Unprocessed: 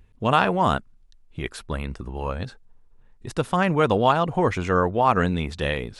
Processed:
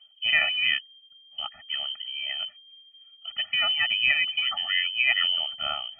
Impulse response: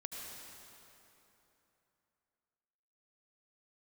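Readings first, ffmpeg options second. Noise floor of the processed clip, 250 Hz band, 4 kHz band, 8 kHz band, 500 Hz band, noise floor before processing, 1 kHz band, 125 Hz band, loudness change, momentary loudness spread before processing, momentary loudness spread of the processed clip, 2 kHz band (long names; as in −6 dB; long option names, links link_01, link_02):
−55 dBFS, below −30 dB, +13.5 dB, below −35 dB, −23.5 dB, −54 dBFS, −17.5 dB, below −30 dB, −1.0 dB, 14 LU, 14 LU, +5.5 dB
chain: -af "lowpass=frequency=2700:width_type=q:width=0.5098,lowpass=frequency=2700:width_type=q:width=0.6013,lowpass=frequency=2700:width_type=q:width=0.9,lowpass=frequency=2700:width_type=q:width=2.563,afreqshift=-3200,afftfilt=real='re*eq(mod(floor(b*sr/1024/290),2),0)':imag='im*eq(mod(floor(b*sr/1024/290),2),0)':win_size=1024:overlap=0.75,volume=-1.5dB"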